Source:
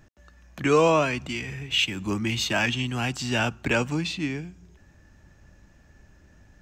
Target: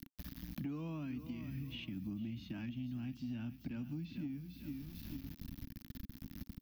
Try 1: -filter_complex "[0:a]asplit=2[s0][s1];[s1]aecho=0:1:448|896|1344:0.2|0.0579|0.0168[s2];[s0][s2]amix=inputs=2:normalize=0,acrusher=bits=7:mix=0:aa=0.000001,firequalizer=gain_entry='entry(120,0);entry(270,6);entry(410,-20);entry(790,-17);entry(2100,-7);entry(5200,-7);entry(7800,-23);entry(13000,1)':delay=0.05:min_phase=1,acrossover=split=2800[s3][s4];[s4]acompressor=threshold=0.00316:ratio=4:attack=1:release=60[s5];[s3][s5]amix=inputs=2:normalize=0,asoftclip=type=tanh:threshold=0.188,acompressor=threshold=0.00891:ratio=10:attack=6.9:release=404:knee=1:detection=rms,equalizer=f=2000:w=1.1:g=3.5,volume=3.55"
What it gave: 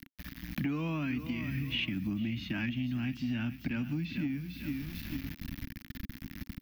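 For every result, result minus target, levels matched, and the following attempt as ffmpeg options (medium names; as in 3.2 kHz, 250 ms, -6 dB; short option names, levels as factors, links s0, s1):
compression: peak gain reduction -8 dB; 2 kHz band +7.5 dB
-filter_complex "[0:a]asplit=2[s0][s1];[s1]aecho=0:1:448|896|1344:0.2|0.0579|0.0168[s2];[s0][s2]amix=inputs=2:normalize=0,acrusher=bits=7:mix=0:aa=0.000001,firequalizer=gain_entry='entry(120,0);entry(270,6);entry(410,-20);entry(790,-17);entry(2100,-7);entry(5200,-7);entry(7800,-23);entry(13000,1)':delay=0.05:min_phase=1,acrossover=split=2800[s3][s4];[s4]acompressor=threshold=0.00316:ratio=4:attack=1:release=60[s5];[s3][s5]amix=inputs=2:normalize=0,asoftclip=type=tanh:threshold=0.188,acompressor=threshold=0.00316:ratio=10:attack=6.9:release=404:knee=1:detection=rms,equalizer=f=2000:w=1.1:g=3.5,volume=3.55"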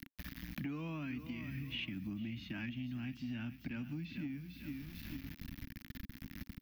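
2 kHz band +8.0 dB
-filter_complex "[0:a]asplit=2[s0][s1];[s1]aecho=0:1:448|896|1344:0.2|0.0579|0.0168[s2];[s0][s2]amix=inputs=2:normalize=0,acrusher=bits=7:mix=0:aa=0.000001,firequalizer=gain_entry='entry(120,0);entry(270,6);entry(410,-20);entry(790,-17);entry(2100,-7);entry(5200,-7);entry(7800,-23);entry(13000,1)':delay=0.05:min_phase=1,acrossover=split=2800[s3][s4];[s4]acompressor=threshold=0.00316:ratio=4:attack=1:release=60[s5];[s3][s5]amix=inputs=2:normalize=0,asoftclip=type=tanh:threshold=0.188,acompressor=threshold=0.00316:ratio=10:attack=6.9:release=404:knee=1:detection=rms,equalizer=f=2000:w=1.1:g=-7.5,volume=3.55"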